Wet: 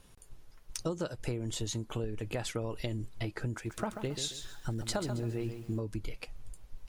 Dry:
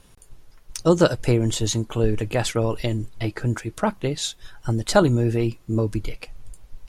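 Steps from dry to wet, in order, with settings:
downward compressor 10 to 1, threshold −25 dBFS, peak gain reduction 15 dB
0:03.52–0:05.80: feedback echo at a low word length 136 ms, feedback 35%, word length 8 bits, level −8 dB
level −6 dB

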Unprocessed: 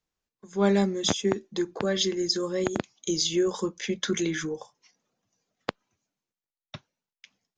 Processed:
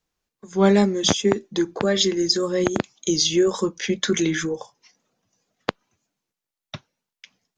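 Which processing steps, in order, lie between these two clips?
tape wow and flutter 50 cents
level +6 dB

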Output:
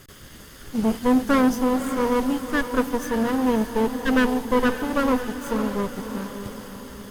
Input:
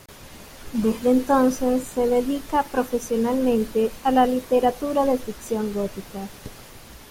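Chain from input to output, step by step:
lower of the sound and its delayed copy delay 0.61 ms
feedback delay with all-pass diffusion 565 ms, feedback 50%, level −9.5 dB

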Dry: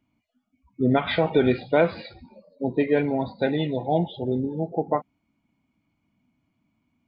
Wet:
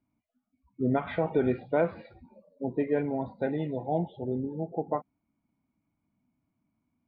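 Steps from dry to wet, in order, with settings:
low-pass filter 1,700 Hz 12 dB per octave
level −6 dB

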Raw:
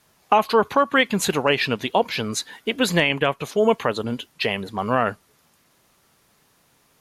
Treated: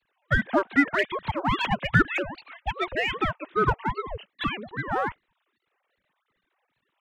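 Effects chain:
three sine waves on the formant tracks
gain on a spectral selection 0:01.66–0:02.23, 390–2,700 Hz +7 dB
in parallel at −5.5 dB: hard clipping −20 dBFS, distortion −5 dB
on the sum: ring modulator whose carrier an LFO sweeps 480 Hz, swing 80%, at 2.5 Hz
level −5 dB

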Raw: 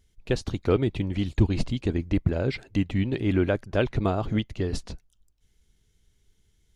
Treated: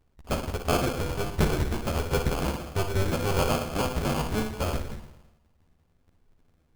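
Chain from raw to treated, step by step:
sub-harmonics by changed cycles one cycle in 2, inverted
spring reverb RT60 1 s, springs 55/59 ms, chirp 65 ms, DRR 4.5 dB
multi-voice chorus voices 2, 0.32 Hz, delay 13 ms, depth 1.3 ms
sample-rate reduction 1,900 Hz, jitter 0%

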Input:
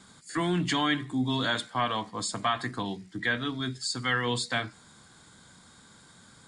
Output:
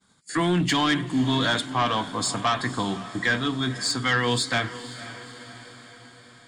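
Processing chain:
downward expander −44 dBFS
sine wavefolder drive 4 dB, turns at −14.5 dBFS
feedback delay with all-pass diffusion 514 ms, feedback 57%, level −14.5 dB
level −1.5 dB

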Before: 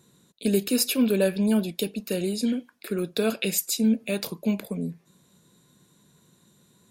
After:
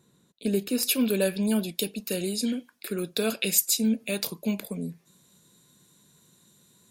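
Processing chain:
high-shelf EQ 2,800 Hz −3.5 dB, from 0:00.83 +7.5 dB
level −3 dB

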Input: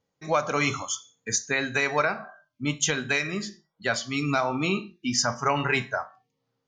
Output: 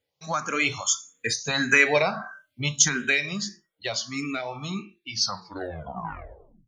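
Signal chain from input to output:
turntable brake at the end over 1.61 s
source passing by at 0:01.95, 7 m/s, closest 4 metres
dynamic equaliser 190 Hz, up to +5 dB, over −44 dBFS, Q 0.84
in parallel at +2 dB: downward compressor, threshold −35 dBFS, peak gain reduction 16.5 dB
on the sum: tilt shelving filter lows −4.5 dB, about 1,400 Hz
frequency shifter mixed with the dry sound +1.6 Hz
level +5.5 dB

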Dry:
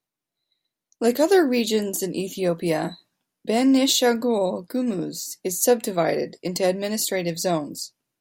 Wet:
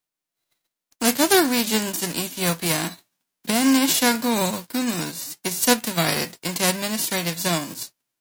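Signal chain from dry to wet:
spectral envelope flattened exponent 0.3

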